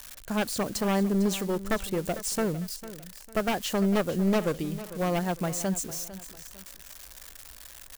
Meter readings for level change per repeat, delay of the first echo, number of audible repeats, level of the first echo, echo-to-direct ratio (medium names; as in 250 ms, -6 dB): -9.0 dB, 451 ms, 2, -15.0 dB, -14.5 dB